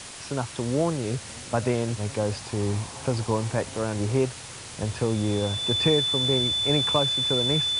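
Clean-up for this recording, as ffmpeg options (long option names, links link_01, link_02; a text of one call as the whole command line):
ffmpeg -i in.wav -af "bandreject=frequency=3500:width=30,afwtdn=0.013" out.wav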